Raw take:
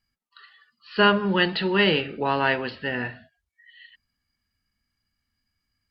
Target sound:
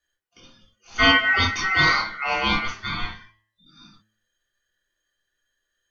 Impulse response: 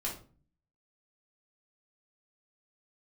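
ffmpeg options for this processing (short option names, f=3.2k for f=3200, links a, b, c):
-filter_complex "[0:a]aeval=exprs='val(0)*sin(2*PI*1700*n/s)':c=same,bandreject=f=108:t=h:w=4,bandreject=f=216:t=h:w=4,bandreject=f=324:t=h:w=4,bandreject=f=432:t=h:w=4,bandreject=f=540:t=h:w=4,bandreject=f=648:t=h:w=4,bandreject=f=756:t=h:w=4,bandreject=f=864:t=h:w=4,bandreject=f=972:t=h:w=4,bandreject=f=1.08k:t=h:w=4,bandreject=f=1.188k:t=h:w=4,bandreject=f=1.296k:t=h:w=4,bandreject=f=1.404k:t=h:w=4,bandreject=f=1.512k:t=h:w=4,bandreject=f=1.62k:t=h:w=4,bandreject=f=1.728k:t=h:w=4,bandreject=f=1.836k:t=h:w=4,bandreject=f=1.944k:t=h:w=4,bandreject=f=2.052k:t=h:w=4,bandreject=f=2.16k:t=h:w=4,bandreject=f=2.268k:t=h:w=4,bandreject=f=2.376k:t=h:w=4,bandreject=f=2.484k:t=h:w=4,bandreject=f=2.592k:t=h:w=4,bandreject=f=2.7k:t=h:w=4,bandreject=f=2.808k:t=h:w=4,bandreject=f=2.916k:t=h:w=4,bandreject=f=3.024k:t=h:w=4,bandreject=f=3.132k:t=h:w=4,bandreject=f=3.24k:t=h:w=4,bandreject=f=3.348k:t=h:w=4[a];[1:a]atrim=start_sample=2205,atrim=end_sample=3087[b];[a][b]afir=irnorm=-1:irlink=0,volume=1.5dB"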